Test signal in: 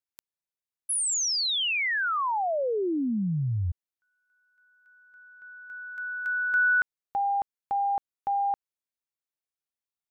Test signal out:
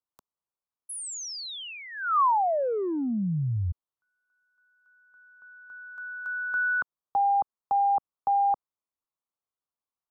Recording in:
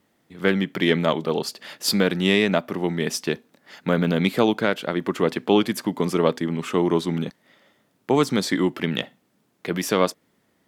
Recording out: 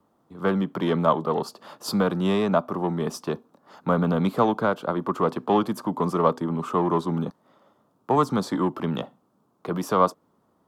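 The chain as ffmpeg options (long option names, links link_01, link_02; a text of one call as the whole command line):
ffmpeg -i in.wav -filter_complex "[0:a]highshelf=frequency=1500:width_type=q:width=3:gain=-9,acrossover=split=240|500|5700[link_01][link_02][link_03][link_04];[link_02]asoftclip=type=tanh:threshold=-30dB[link_05];[link_01][link_05][link_03][link_04]amix=inputs=4:normalize=0" out.wav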